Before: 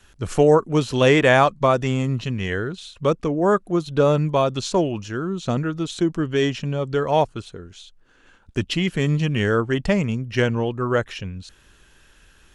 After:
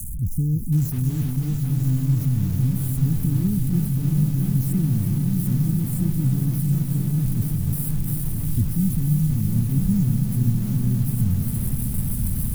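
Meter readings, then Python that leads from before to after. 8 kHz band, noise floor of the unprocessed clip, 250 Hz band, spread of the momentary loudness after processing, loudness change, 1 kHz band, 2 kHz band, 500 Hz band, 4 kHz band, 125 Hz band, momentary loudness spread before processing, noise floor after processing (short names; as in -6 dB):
+4.0 dB, -55 dBFS, +0.5 dB, 4 LU, -1.5 dB, under -20 dB, under -20 dB, -25.0 dB, under -15 dB, +6.0 dB, 11 LU, -27 dBFS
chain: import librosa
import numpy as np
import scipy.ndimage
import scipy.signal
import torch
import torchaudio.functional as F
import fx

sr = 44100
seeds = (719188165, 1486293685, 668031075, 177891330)

p1 = x + 0.5 * 10.0 ** (-22.0 / 20.0) * np.sign(x)
p2 = scipy.signal.sosfilt(scipy.signal.cheby2(4, 60, [560.0, 3300.0], 'bandstop', fs=sr, output='sos'), p1)
p3 = fx.low_shelf(p2, sr, hz=360.0, db=-4.0)
p4 = fx.rider(p3, sr, range_db=10, speed_s=0.5)
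p5 = p3 + F.gain(torch.from_numpy(p4), 1.0).numpy()
p6 = fx.env_phaser(p5, sr, low_hz=580.0, high_hz=2000.0, full_db=-16.0)
p7 = fx.rotary_switch(p6, sr, hz=0.85, then_hz=6.7, switch_at_s=9.32)
p8 = p7 + fx.echo_heads(p7, sr, ms=328, heads='first and third', feedback_pct=73, wet_db=-9, dry=0)
y = fx.echo_crushed(p8, sr, ms=724, feedback_pct=35, bits=6, wet_db=-7.0)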